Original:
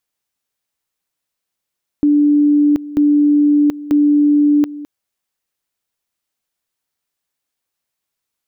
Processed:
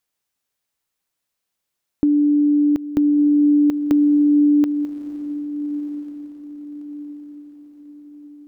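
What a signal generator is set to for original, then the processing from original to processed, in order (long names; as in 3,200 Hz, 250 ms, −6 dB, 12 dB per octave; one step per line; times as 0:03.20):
tone at two levels in turn 293 Hz −8.5 dBFS, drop 17 dB, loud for 0.73 s, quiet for 0.21 s, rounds 3
downward compressor, threshold −14 dBFS
feedback delay with all-pass diffusion 1,251 ms, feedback 41%, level −13 dB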